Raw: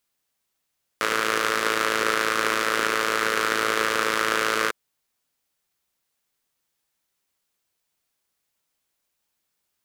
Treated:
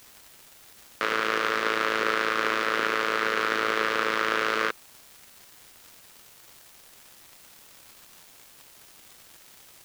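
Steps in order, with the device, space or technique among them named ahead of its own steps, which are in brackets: 78 rpm shellac record (BPF 110–4300 Hz; crackle 260/s -36 dBFS; white noise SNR 23 dB); gain -2 dB

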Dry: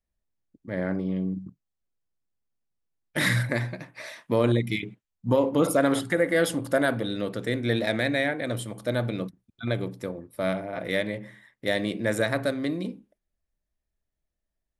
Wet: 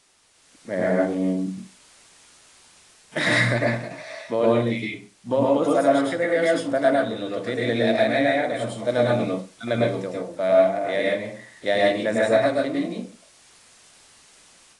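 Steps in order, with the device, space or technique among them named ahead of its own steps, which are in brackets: filmed off a television (BPF 200–7800 Hz; bell 660 Hz +7 dB 0.46 oct; reverb RT60 0.35 s, pre-delay 99 ms, DRR -3.5 dB; white noise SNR 31 dB; AGC gain up to 9 dB; gain -5.5 dB; AAC 48 kbps 22050 Hz)

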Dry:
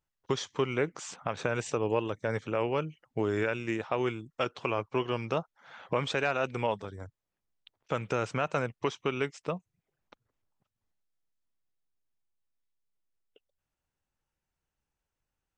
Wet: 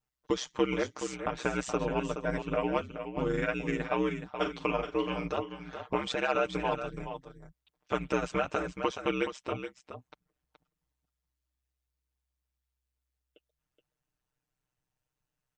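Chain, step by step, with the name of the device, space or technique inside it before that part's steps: ring-modulated robot voice (ring modulator 64 Hz; comb 6.6 ms, depth 85%); 4.34–5.28 doubler 44 ms -10 dB; echo 0.423 s -9 dB

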